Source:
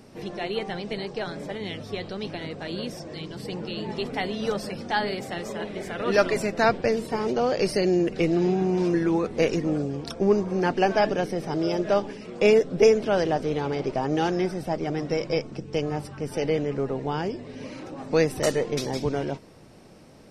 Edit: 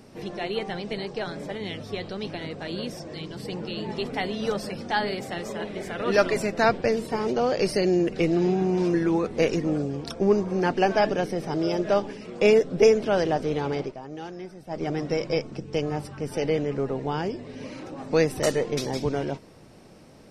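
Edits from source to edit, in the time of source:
0:13.79–0:14.82: duck −13 dB, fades 0.15 s

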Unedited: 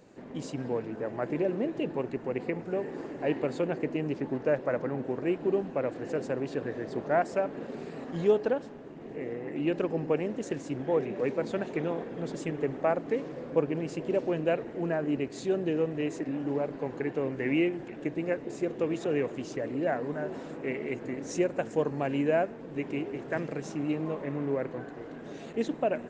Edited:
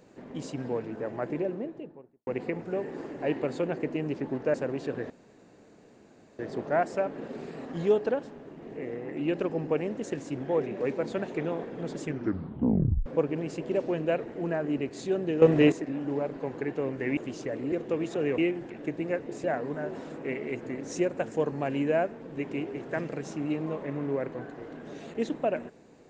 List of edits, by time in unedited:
0:01.10–0:02.27: fade out and dull
0:04.54–0:06.22: remove
0:06.78: splice in room tone 1.29 s
0:12.42: tape stop 1.03 s
0:15.81–0:16.11: clip gain +11 dB
0:17.56–0:18.62: swap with 0:19.28–0:19.83

